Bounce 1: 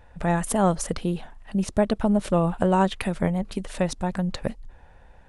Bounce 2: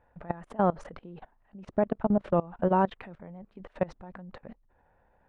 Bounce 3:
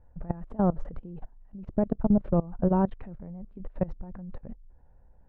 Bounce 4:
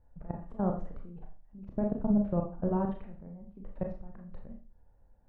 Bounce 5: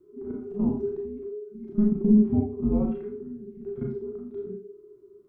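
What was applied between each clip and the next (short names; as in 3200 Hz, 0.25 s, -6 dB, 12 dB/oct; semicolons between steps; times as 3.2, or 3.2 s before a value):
LPF 1600 Hz 12 dB/oct; low shelf 110 Hz -11.5 dB; level quantiser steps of 22 dB
tilt -4.5 dB/oct; gain -6.5 dB
Schroeder reverb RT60 0.38 s, combs from 27 ms, DRR 2 dB; gain -7 dB
pre-echo 34 ms -16 dB; frequency shift -420 Hz; harmonic-percussive split percussive -11 dB; gain +7.5 dB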